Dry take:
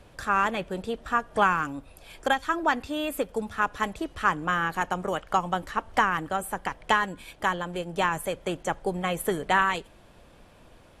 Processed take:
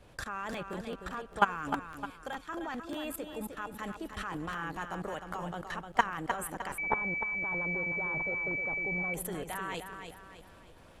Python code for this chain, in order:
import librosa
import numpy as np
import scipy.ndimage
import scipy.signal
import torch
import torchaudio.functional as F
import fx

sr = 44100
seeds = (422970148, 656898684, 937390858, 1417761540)

y = fx.level_steps(x, sr, step_db=19)
y = fx.echo_feedback(y, sr, ms=306, feedback_pct=40, wet_db=-7.5)
y = fx.buffer_crackle(y, sr, first_s=0.52, period_s=0.2, block=512, kind='repeat')
y = fx.pwm(y, sr, carrier_hz=2300.0, at=(6.78, 9.14))